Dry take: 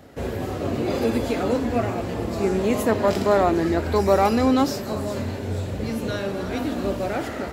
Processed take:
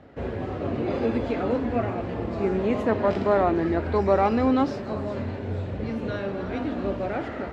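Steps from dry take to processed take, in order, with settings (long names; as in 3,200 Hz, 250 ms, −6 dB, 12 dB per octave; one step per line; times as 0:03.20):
low-pass filter 2,700 Hz 12 dB per octave
level −2.5 dB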